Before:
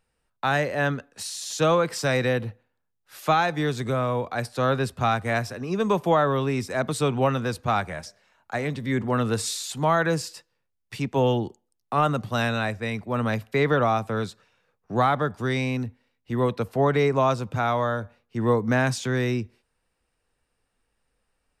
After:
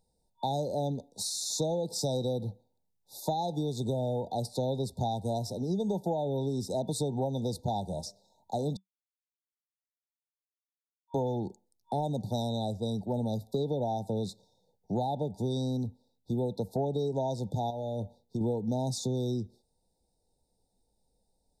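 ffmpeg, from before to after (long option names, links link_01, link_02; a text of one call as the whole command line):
ffmpeg -i in.wav -filter_complex "[0:a]asettb=1/sr,asplit=3[link_01][link_02][link_03];[link_01]atrim=end=17.704[link_04];[link_02]atrim=start=17.7:end=18.41,asetpts=PTS-STARTPTS,afade=type=in:duration=0.004:curve=qsin,afade=type=out:start_time=0.706:duration=0.004:curve=qsin,acompressor=threshold=-27dB:ratio=16:attack=3.2:release=140:knee=1:detection=peak[link_05];[link_03]atrim=start=18.406[link_06];[link_04][link_05]acrossfade=duration=0.004:curve1=hsin:curve2=qsin[link_07];[link_07][link_06]acrossfade=duration=0.004:curve1=qsin:curve2=hsin,asplit=3[link_08][link_09][link_10];[link_08]atrim=end=8.77,asetpts=PTS-STARTPTS,afade=type=out:start_time=8.766:duration=0.004:curve=hsin[link_11];[link_09]atrim=start=8.77:end=11.14,asetpts=PTS-STARTPTS,volume=0[link_12];[link_10]atrim=start=11.14,asetpts=PTS-STARTPTS,afade=type=in:duration=0.004:curve=hsin[link_13];[link_11][link_12][link_13]concat=n=3:v=0:a=1,afftfilt=real='re*(1-between(b*sr/4096,940,3500))':imag='im*(1-between(b*sr/4096,940,3500))':win_size=4096:overlap=0.75,equalizer=frequency=190:width_type=o:width=0.22:gain=6,acompressor=threshold=-28dB:ratio=6" out.wav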